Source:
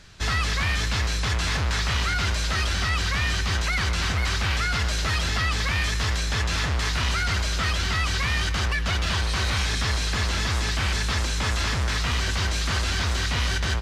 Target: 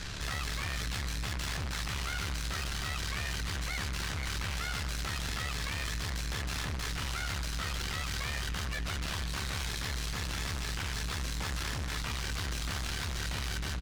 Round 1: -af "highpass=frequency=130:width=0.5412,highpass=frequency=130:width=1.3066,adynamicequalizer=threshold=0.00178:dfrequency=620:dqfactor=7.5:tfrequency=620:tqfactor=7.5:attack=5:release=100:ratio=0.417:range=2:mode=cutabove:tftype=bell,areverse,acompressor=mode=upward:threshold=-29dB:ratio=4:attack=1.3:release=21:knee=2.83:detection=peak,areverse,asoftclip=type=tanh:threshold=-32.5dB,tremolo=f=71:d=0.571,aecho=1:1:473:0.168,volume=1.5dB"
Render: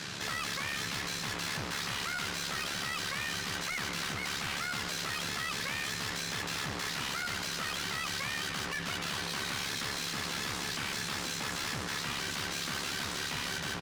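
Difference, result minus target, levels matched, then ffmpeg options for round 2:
125 Hz band −9.0 dB
-af "adynamicequalizer=threshold=0.00178:dfrequency=620:dqfactor=7.5:tfrequency=620:tqfactor=7.5:attack=5:release=100:ratio=0.417:range=2:mode=cutabove:tftype=bell,areverse,acompressor=mode=upward:threshold=-29dB:ratio=4:attack=1.3:release=21:knee=2.83:detection=peak,areverse,asoftclip=type=tanh:threshold=-32.5dB,tremolo=f=71:d=0.571,aecho=1:1:473:0.168,volume=1.5dB"

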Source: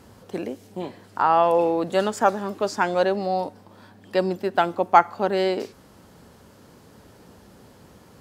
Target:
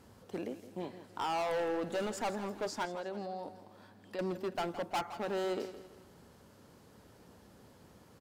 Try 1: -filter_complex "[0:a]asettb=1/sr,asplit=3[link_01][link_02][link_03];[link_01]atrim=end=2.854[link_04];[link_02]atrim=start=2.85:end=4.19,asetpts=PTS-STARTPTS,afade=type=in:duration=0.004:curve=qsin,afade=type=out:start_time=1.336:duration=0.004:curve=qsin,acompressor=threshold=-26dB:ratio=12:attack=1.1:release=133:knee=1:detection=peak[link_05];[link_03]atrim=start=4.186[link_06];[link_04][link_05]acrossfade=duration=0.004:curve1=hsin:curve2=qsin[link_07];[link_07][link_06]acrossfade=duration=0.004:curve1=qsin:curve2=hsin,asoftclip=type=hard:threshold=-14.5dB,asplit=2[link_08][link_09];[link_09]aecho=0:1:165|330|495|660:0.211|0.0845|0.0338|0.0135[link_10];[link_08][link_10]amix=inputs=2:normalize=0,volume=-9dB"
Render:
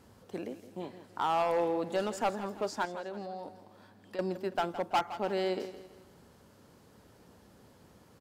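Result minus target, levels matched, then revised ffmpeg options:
hard clipping: distortion −6 dB
-filter_complex "[0:a]asettb=1/sr,asplit=3[link_01][link_02][link_03];[link_01]atrim=end=2.854[link_04];[link_02]atrim=start=2.85:end=4.19,asetpts=PTS-STARTPTS,afade=type=in:duration=0.004:curve=qsin,afade=type=out:start_time=1.336:duration=0.004:curve=qsin,acompressor=threshold=-26dB:ratio=12:attack=1.1:release=133:knee=1:detection=peak[link_05];[link_03]atrim=start=4.186[link_06];[link_04][link_05]acrossfade=duration=0.004:curve1=hsin:curve2=qsin[link_07];[link_07][link_06]acrossfade=duration=0.004:curve1=qsin:curve2=hsin,asoftclip=type=hard:threshold=-22dB,asplit=2[link_08][link_09];[link_09]aecho=0:1:165|330|495|660:0.211|0.0845|0.0338|0.0135[link_10];[link_08][link_10]amix=inputs=2:normalize=0,volume=-9dB"

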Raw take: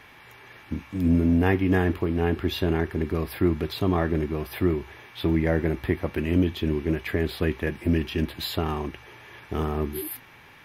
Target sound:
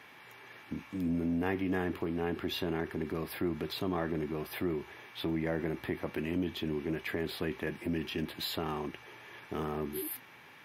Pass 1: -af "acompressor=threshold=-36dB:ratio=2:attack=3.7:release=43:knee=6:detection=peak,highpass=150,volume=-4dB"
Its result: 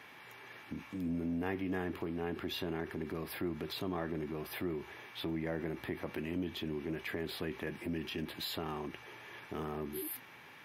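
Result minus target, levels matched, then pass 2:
downward compressor: peak gain reduction +4 dB
-af "acompressor=threshold=-27.5dB:ratio=2:attack=3.7:release=43:knee=6:detection=peak,highpass=150,volume=-4dB"

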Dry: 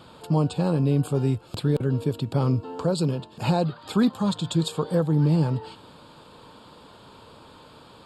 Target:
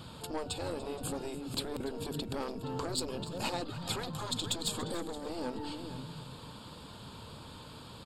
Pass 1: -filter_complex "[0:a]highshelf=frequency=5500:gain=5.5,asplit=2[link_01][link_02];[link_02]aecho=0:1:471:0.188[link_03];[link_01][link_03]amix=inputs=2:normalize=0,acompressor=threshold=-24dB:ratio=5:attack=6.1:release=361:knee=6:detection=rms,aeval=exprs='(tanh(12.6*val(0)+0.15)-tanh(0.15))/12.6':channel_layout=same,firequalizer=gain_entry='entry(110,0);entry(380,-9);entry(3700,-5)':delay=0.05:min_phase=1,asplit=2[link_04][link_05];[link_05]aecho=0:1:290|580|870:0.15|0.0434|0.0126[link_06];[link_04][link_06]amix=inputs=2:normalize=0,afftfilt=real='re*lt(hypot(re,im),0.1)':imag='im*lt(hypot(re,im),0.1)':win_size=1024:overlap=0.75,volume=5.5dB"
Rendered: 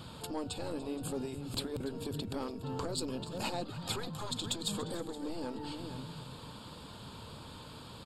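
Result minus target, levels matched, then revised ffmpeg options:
downward compressor: peak gain reduction +4.5 dB
-filter_complex "[0:a]highshelf=frequency=5500:gain=5.5,asplit=2[link_01][link_02];[link_02]aecho=0:1:471:0.188[link_03];[link_01][link_03]amix=inputs=2:normalize=0,acompressor=threshold=-18dB:ratio=5:attack=6.1:release=361:knee=6:detection=rms,aeval=exprs='(tanh(12.6*val(0)+0.15)-tanh(0.15))/12.6':channel_layout=same,firequalizer=gain_entry='entry(110,0);entry(380,-9);entry(3700,-5)':delay=0.05:min_phase=1,asplit=2[link_04][link_05];[link_05]aecho=0:1:290|580|870:0.15|0.0434|0.0126[link_06];[link_04][link_06]amix=inputs=2:normalize=0,afftfilt=real='re*lt(hypot(re,im),0.1)':imag='im*lt(hypot(re,im),0.1)':win_size=1024:overlap=0.75,volume=5.5dB"

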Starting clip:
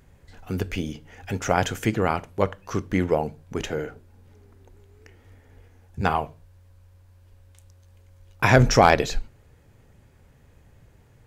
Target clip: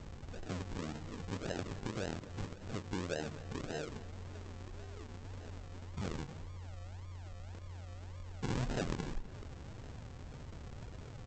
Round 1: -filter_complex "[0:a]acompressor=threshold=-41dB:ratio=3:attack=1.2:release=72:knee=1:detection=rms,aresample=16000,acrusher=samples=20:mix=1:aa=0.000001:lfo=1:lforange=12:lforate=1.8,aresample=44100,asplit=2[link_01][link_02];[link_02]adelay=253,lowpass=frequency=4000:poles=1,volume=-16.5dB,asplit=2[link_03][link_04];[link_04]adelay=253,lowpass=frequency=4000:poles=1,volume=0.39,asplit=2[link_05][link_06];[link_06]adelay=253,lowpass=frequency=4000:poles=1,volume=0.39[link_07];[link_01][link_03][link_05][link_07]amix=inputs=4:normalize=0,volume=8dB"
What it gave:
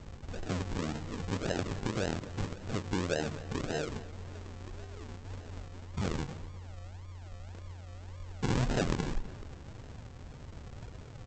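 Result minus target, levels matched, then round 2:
downward compressor: peak gain reduction −6.5 dB
-filter_complex "[0:a]acompressor=threshold=-50.5dB:ratio=3:attack=1.2:release=72:knee=1:detection=rms,aresample=16000,acrusher=samples=20:mix=1:aa=0.000001:lfo=1:lforange=12:lforate=1.8,aresample=44100,asplit=2[link_01][link_02];[link_02]adelay=253,lowpass=frequency=4000:poles=1,volume=-16.5dB,asplit=2[link_03][link_04];[link_04]adelay=253,lowpass=frequency=4000:poles=1,volume=0.39,asplit=2[link_05][link_06];[link_06]adelay=253,lowpass=frequency=4000:poles=1,volume=0.39[link_07];[link_01][link_03][link_05][link_07]amix=inputs=4:normalize=0,volume=8dB"

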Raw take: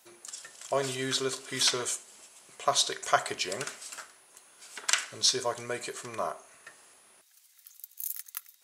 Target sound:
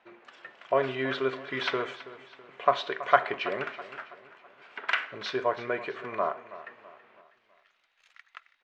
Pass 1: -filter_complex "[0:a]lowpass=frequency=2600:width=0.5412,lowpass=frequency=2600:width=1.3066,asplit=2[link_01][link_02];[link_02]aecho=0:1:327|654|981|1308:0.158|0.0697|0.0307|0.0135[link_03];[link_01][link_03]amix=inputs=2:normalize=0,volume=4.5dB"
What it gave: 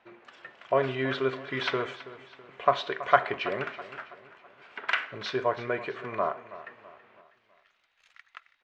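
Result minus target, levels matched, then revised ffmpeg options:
125 Hz band +5.0 dB
-filter_complex "[0:a]lowpass=frequency=2600:width=0.5412,lowpass=frequency=2600:width=1.3066,equalizer=frequency=66:width_type=o:width=2:gain=-10.5,asplit=2[link_01][link_02];[link_02]aecho=0:1:327|654|981|1308:0.158|0.0697|0.0307|0.0135[link_03];[link_01][link_03]amix=inputs=2:normalize=0,volume=4.5dB"

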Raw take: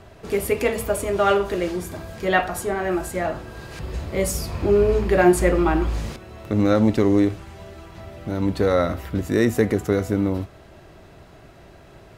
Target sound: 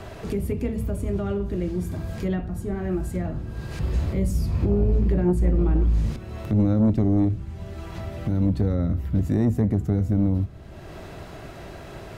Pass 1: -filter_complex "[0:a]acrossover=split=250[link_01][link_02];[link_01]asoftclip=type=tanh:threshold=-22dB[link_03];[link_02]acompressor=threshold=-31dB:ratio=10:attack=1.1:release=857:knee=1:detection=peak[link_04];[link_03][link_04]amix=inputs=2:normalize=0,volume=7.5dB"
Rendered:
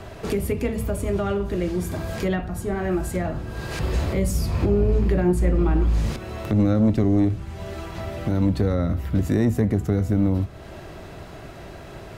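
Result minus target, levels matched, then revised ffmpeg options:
downward compressor: peak gain reduction −8.5 dB
-filter_complex "[0:a]acrossover=split=250[link_01][link_02];[link_01]asoftclip=type=tanh:threshold=-22dB[link_03];[link_02]acompressor=threshold=-40.5dB:ratio=10:attack=1.1:release=857:knee=1:detection=peak[link_04];[link_03][link_04]amix=inputs=2:normalize=0,volume=7.5dB"

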